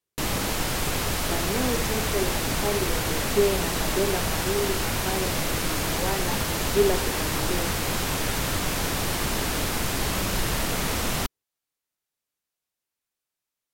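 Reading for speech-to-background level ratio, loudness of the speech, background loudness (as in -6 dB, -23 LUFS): -4.0 dB, -30.0 LUFS, -26.0 LUFS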